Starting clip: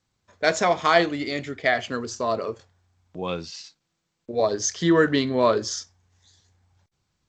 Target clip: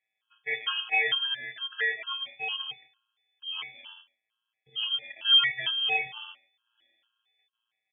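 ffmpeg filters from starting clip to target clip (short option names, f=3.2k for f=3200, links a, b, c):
-filter_complex "[0:a]highpass=130,equalizer=f=1.7k:w=0.46:g=4,bandreject=f=175.2:t=h:w=4,bandreject=f=350.4:t=h:w=4,bandreject=f=525.6:t=h:w=4,bandreject=f=700.8:t=h:w=4,bandreject=f=876:t=h:w=4,bandreject=f=1.0512k:t=h:w=4,bandreject=f=1.2264k:t=h:w=4,bandreject=f=1.4016k:t=h:w=4,afftfilt=real='hypot(re,im)*cos(PI*b)':imag='0':win_size=512:overlap=0.75,aresample=11025,asoftclip=type=hard:threshold=-12.5dB,aresample=44100,acrusher=samples=11:mix=1:aa=0.000001,asuperstop=centerf=730:order=4:qfactor=3.8,asplit=2[a][b];[b]aecho=0:1:130:0.0708[c];[a][c]amix=inputs=2:normalize=0,asetrate=40517,aresample=44100,lowpass=f=3k:t=q:w=0.5098,lowpass=f=3k:t=q:w=0.6013,lowpass=f=3k:t=q:w=0.9,lowpass=f=3k:t=q:w=2.563,afreqshift=-3500,afftfilt=real='re*gt(sin(2*PI*2.2*pts/sr)*(1-2*mod(floor(b*sr/1024/850),2)),0)':imag='im*gt(sin(2*PI*2.2*pts/sr)*(1-2*mod(floor(b*sr/1024/850),2)),0)':win_size=1024:overlap=0.75"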